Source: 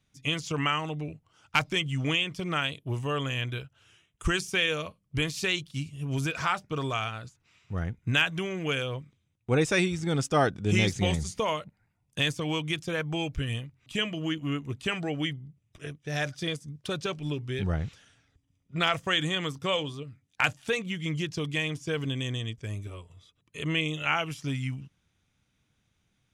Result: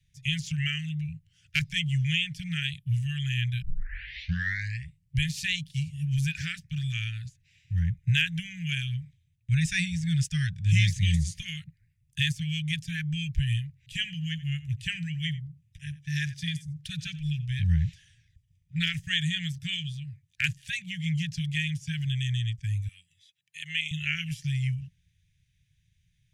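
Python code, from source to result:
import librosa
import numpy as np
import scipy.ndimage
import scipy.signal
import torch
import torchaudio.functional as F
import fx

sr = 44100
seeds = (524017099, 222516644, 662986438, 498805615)

y = fx.echo_single(x, sr, ms=87, db=-19.0, at=(13.81, 17.47))
y = fx.highpass(y, sr, hz=460.0, slope=12, at=(22.88, 23.91))
y = fx.edit(y, sr, fx.tape_start(start_s=3.62, length_s=1.54), tone=tone)
y = scipy.signal.sosfilt(scipy.signal.cheby1(5, 1.0, [170.0, 1700.0], 'bandstop', fs=sr, output='sos'), y)
y = fx.low_shelf(y, sr, hz=160.0, db=9.5)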